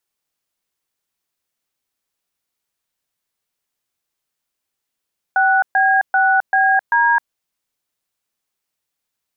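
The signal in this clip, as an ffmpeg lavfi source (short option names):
-f lavfi -i "aevalsrc='0.2*clip(min(mod(t,0.39),0.263-mod(t,0.39))/0.002,0,1)*(eq(floor(t/0.39),0)*(sin(2*PI*770*mod(t,0.39))+sin(2*PI*1477*mod(t,0.39)))+eq(floor(t/0.39),1)*(sin(2*PI*770*mod(t,0.39))+sin(2*PI*1633*mod(t,0.39)))+eq(floor(t/0.39),2)*(sin(2*PI*770*mod(t,0.39))+sin(2*PI*1477*mod(t,0.39)))+eq(floor(t/0.39),3)*(sin(2*PI*770*mod(t,0.39))+sin(2*PI*1633*mod(t,0.39)))+eq(floor(t/0.39),4)*(sin(2*PI*941*mod(t,0.39))+sin(2*PI*1633*mod(t,0.39))))':d=1.95:s=44100"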